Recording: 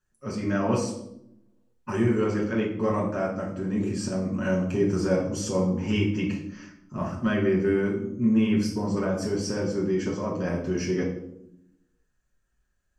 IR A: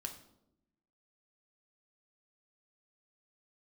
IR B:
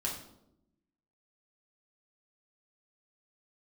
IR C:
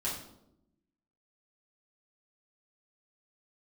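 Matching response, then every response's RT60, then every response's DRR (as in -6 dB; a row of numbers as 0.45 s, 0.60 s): B; 0.85 s, 0.80 s, 0.80 s; 3.5 dB, -3.5 dB, -8.5 dB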